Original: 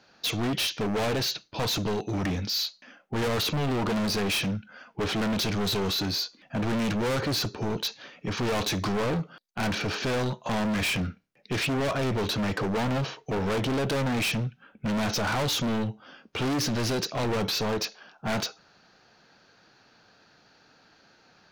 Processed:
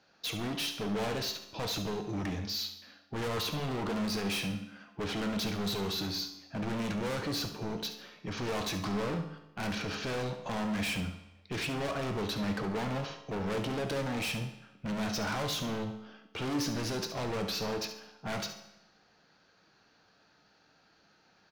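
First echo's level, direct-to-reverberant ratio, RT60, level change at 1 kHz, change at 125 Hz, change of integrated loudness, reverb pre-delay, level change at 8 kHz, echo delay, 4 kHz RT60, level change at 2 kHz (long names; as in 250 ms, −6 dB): −11.5 dB, 5.5 dB, 1.0 s, −6.0 dB, −7.5 dB, −6.5 dB, 6 ms, −6.5 dB, 70 ms, 0.90 s, −6.5 dB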